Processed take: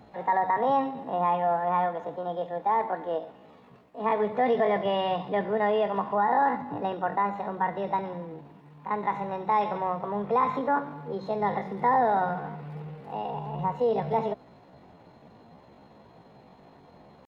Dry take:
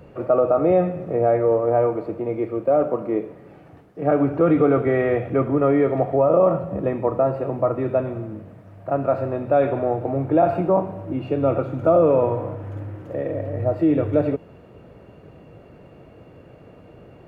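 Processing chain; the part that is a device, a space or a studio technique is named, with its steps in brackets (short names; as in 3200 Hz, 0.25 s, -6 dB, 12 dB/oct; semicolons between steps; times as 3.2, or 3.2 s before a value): chipmunk voice (pitch shift +7 st); gain -7 dB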